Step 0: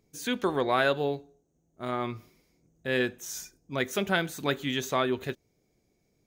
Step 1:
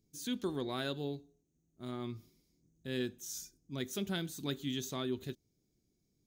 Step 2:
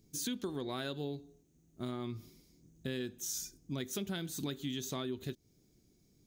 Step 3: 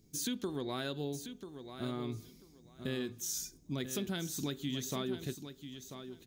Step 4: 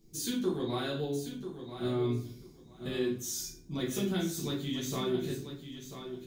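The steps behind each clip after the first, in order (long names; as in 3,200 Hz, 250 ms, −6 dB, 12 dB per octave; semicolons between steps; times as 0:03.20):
flat-topped bell 1,100 Hz −11.5 dB 2.8 octaves; level −5 dB
downward compressor 6 to 1, threshold −45 dBFS, peak gain reduction 13.5 dB; level +9.5 dB
repeating echo 990 ms, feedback 18%, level −10 dB; level +1 dB
rectangular room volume 48 cubic metres, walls mixed, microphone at 1.2 metres; level −4 dB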